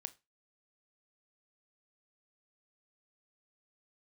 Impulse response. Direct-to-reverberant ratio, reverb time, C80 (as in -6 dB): 13.0 dB, 0.25 s, 27.5 dB